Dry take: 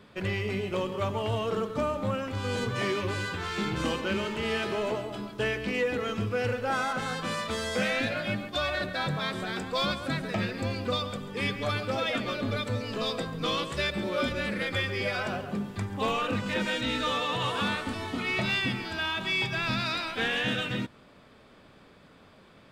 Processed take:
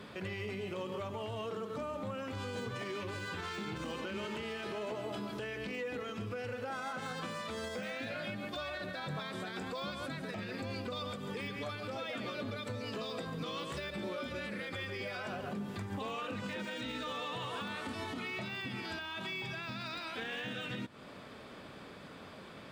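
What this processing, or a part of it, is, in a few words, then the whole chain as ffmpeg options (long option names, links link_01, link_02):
podcast mastering chain: -af "highpass=frequency=99:poles=1,deesser=1,acompressor=threshold=-41dB:ratio=3,alimiter=level_in=12.5dB:limit=-24dB:level=0:latency=1:release=121,volume=-12.5dB,volume=6dB" -ar 44100 -c:a libmp3lame -b:a 112k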